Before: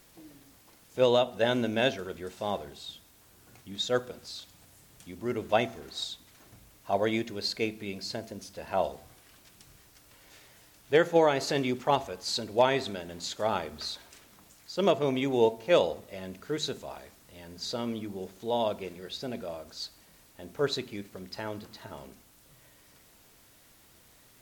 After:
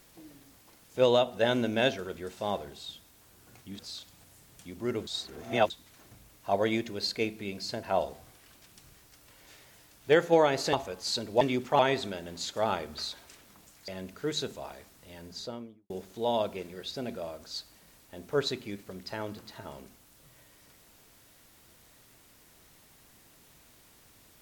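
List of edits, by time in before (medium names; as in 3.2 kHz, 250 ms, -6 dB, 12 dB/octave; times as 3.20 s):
3.79–4.20 s: delete
5.48–6.11 s: reverse
8.24–8.66 s: delete
11.56–11.94 s: move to 12.62 s
14.71–16.14 s: delete
17.44–18.16 s: studio fade out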